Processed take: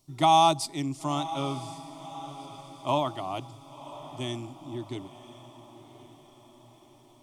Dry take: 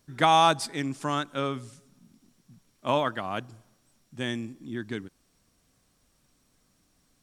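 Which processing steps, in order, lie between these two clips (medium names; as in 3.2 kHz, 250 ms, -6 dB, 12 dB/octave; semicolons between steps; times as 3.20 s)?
static phaser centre 320 Hz, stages 8; echo that smears into a reverb 1038 ms, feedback 51%, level -14.5 dB; trim +1.5 dB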